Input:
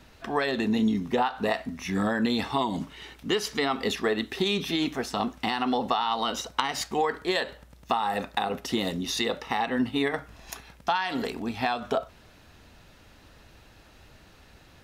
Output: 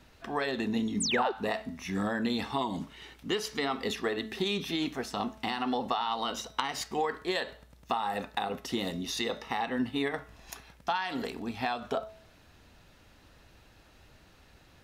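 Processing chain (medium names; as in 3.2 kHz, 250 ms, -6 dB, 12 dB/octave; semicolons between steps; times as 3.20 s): de-hum 217.5 Hz, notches 29; painted sound fall, 1.00–1.32 s, 340–9800 Hz -26 dBFS; trim -4.5 dB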